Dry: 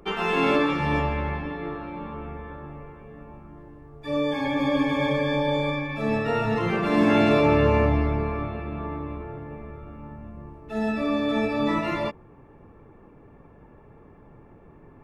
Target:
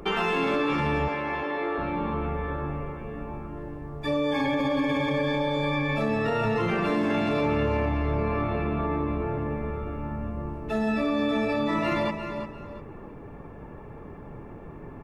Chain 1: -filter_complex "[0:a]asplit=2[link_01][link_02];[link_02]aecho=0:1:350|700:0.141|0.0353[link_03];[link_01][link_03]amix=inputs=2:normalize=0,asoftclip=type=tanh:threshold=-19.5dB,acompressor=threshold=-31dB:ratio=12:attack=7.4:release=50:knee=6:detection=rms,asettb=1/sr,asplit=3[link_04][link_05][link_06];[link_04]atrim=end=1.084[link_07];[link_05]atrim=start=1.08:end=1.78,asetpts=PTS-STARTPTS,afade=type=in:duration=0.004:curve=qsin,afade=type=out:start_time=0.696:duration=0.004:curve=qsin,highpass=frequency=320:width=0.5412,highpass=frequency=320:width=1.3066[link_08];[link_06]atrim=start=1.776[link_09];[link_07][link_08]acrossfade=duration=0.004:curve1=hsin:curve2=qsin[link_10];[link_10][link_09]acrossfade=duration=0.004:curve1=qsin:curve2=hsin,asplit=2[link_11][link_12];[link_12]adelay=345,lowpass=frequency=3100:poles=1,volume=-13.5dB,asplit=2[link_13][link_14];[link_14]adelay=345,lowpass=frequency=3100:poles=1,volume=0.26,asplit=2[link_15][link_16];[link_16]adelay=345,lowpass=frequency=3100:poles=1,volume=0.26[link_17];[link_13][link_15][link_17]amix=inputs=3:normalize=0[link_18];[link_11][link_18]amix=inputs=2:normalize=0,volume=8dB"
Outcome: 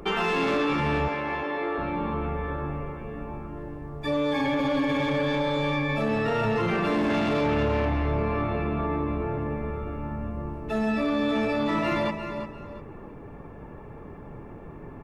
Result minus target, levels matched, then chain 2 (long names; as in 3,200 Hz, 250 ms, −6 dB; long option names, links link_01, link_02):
soft clipping: distortion +13 dB
-filter_complex "[0:a]asplit=2[link_01][link_02];[link_02]aecho=0:1:350|700:0.141|0.0353[link_03];[link_01][link_03]amix=inputs=2:normalize=0,asoftclip=type=tanh:threshold=-10dB,acompressor=threshold=-31dB:ratio=12:attack=7.4:release=50:knee=6:detection=rms,asettb=1/sr,asplit=3[link_04][link_05][link_06];[link_04]atrim=end=1.084[link_07];[link_05]atrim=start=1.08:end=1.78,asetpts=PTS-STARTPTS,afade=type=in:duration=0.004:curve=qsin,afade=type=out:start_time=0.696:duration=0.004:curve=qsin,highpass=frequency=320:width=0.5412,highpass=frequency=320:width=1.3066[link_08];[link_06]atrim=start=1.776[link_09];[link_07][link_08]acrossfade=duration=0.004:curve1=hsin:curve2=qsin[link_10];[link_10][link_09]acrossfade=duration=0.004:curve1=qsin:curve2=hsin,asplit=2[link_11][link_12];[link_12]adelay=345,lowpass=frequency=3100:poles=1,volume=-13.5dB,asplit=2[link_13][link_14];[link_14]adelay=345,lowpass=frequency=3100:poles=1,volume=0.26,asplit=2[link_15][link_16];[link_16]adelay=345,lowpass=frequency=3100:poles=1,volume=0.26[link_17];[link_13][link_15][link_17]amix=inputs=3:normalize=0[link_18];[link_11][link_18]amix=inputs=2:normalize=0,volume=8dB"